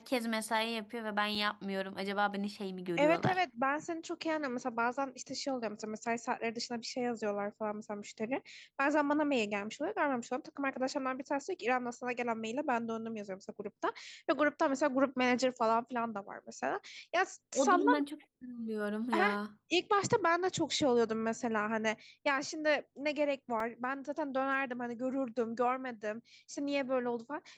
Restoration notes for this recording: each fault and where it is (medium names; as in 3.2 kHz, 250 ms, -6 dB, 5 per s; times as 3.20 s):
1.35 s: dropout 4 ms
23.60 s: dropout 2.6 ms